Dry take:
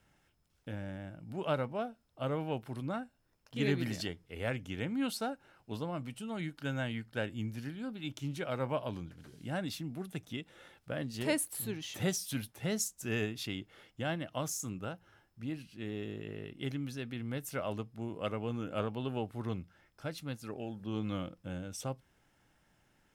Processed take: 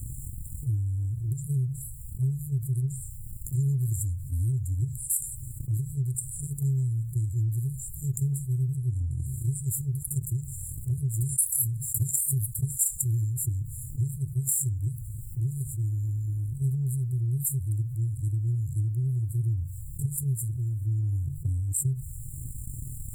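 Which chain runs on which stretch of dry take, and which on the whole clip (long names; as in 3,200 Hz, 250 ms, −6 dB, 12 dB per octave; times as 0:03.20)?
0:08.77–0:09.26: Butterworth low-pass 11,000 Hz 48 dB per octave + double-tracking delay 24 ms −8 dB
whole clip: brick-wall band-stop 140–7,100 Hz; transient designer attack +10 dB, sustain −4 dB; envelope flattener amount 70%; level +3 dB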